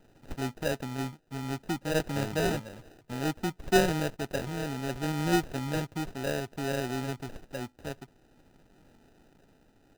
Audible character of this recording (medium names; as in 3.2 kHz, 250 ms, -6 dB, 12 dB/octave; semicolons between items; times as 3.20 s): a buzz of ramps at a fixed pitch in blocks of 8 samples; tremolo triangle 0.59 Hz, depth 35%; aliases and images of a low sample rate 1.1 kHz, jitter 0%; Nellymoser